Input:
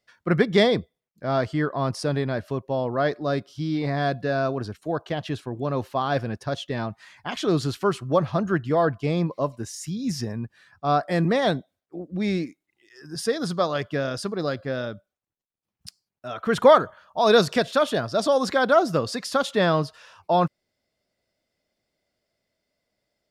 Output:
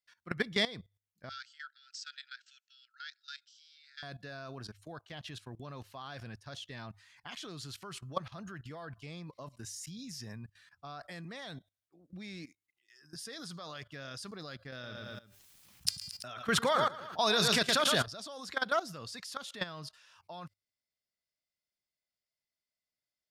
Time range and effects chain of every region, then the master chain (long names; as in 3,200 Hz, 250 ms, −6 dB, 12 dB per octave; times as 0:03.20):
0:01.29–0:04.03: linear-phase brick-wall band-pass 1,300–8,200 Hz + parametric band 2,000 Hz −9.5 dB 0.6 octaves
0:14.72–0:18.06: hum removal 400.4 Hz, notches 13 + repeating echo 112 ms, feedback 31%, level −9.5 dB + envelope flattener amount 50%
whole clip: guitar amp tone stack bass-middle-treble 5-5-5; mains-hum notches 50/100 Hz; output level in coarse steps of 17 dB; level +6.5 dB